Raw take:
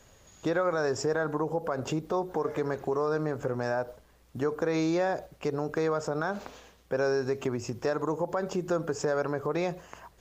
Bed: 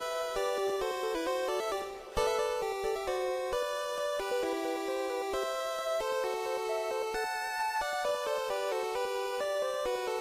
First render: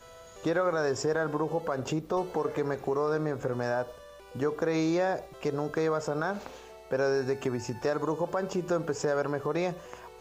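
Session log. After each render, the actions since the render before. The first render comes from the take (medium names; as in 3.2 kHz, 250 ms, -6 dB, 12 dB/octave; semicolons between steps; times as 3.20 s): add bed -16.5 dB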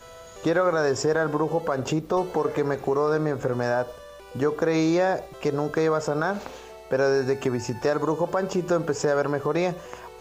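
trim +5.5 dB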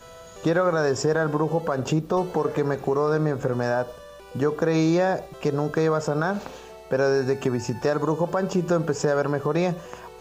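peaking EQ 170 Hz +5.5 dB 0.75 oct; band-stop 2.1 kHz, Q 15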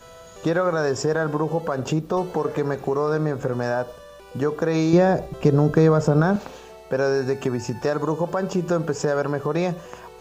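4.93–6.36 s: bass shelf 380 Hz +11.5 dB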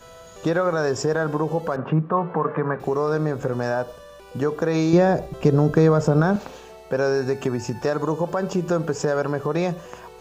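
1.76–2.80 s: cabinet simulation 150–2300 Hz, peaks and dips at 160 Hz +8 dB, 370 Hz -4 dB, 1.1 kHz +9 dB, 1.6 kHz +4 dB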